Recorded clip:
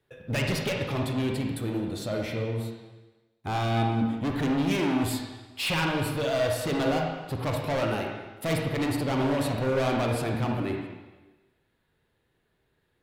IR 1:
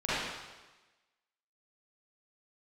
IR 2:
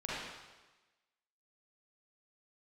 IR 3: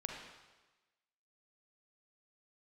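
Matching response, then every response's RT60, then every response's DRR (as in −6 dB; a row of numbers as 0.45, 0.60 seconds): 3; 1.2, 1.2, 1.2 seconds; −13.0, −8.5, 0.5 decibels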